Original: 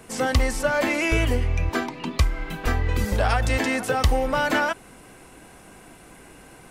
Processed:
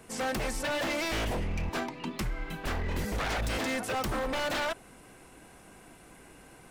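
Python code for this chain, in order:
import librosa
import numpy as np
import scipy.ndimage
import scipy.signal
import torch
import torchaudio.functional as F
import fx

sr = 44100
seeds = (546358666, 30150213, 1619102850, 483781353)

y = fx.dynamic_eq(x, sr, hz=630.0, q=3.0, threshold_db=-36.0, ratio=4.0, max_db=5)
y = 10.0 ** (-20.0 / 20.0) * (np.abs((y / 10.0 ** (-20.0 / 20.0) + 3.0) % 4.0 - 2.0) - 1.0)
y = y * librosa.db_to_amplitude(-6.0)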